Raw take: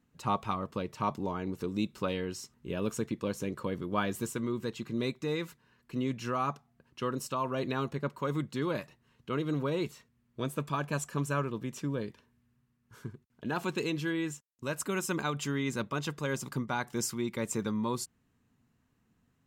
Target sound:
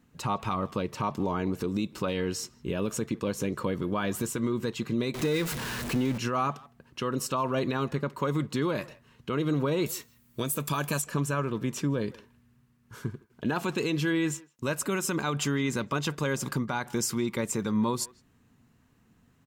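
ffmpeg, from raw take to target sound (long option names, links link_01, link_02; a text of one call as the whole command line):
ffmpeg -i in.wav -filter_complex "[0:a]asettb=1/sr,asplit=3[link_01][link_02][link_03];[link_01]atrim=end=5.144[link_04];[link_02]atrim=start=5.14:end=6.18,asetpts=PTS-STARTPTS,afade=type=in:duration=0.004:curve=qsin,afade=type=out:start_time=1.036:duration=0.004:curve=qsin,aeval=exprs='val(0)+0.5*0.0141*sgn(val(0))':channel_layout=same[link_05];[link_03]atrim=start=6.176[link_06];[link_04][link_05]acrossfade=duration=0.004:curve1=hsin:curve2=qsin[link_07];[link_07][link_06]acrossfade=duration=0.004:curve1=qsin:curve2=hsin,asettb=1/sr,asplit=3[link_08][link_09][link_10];[link_08]atrim=end=9.864[link_11];[link_09]atrim=start=9.86:end=11.02,asetpts=PTS-STARTPTS,afade=type=in:duration=0.004:curve=qsin,afade=type=out:start_time=1.156:duration=0.004:curve=qsin,aemphasis=mode=production:type=75fm[link_12];[link_10]atrim=start=11.016[link_13];[link_11][link_12]acrossfade=duration=0.004:curve1=hsin:curve2=qsin[link_14];[link_14][link_13]acrossfade=duration=0.004:curve1=qsin:curve2=hsin,alimiter=level_in=3.5dB:limit=-24dB:level=0:latency=1:release=125,volume=-3.5dB,asplit=2[link_15][link_16];[link_16]adelay=160,highpass=300,lowpass=3400,asoftclip=type=hard:threshold=-35.5dB,volume=-20dB[link_17];[link_15][link_17]amix=inputs=2:normalize=0,volume=8.5dB" out.wav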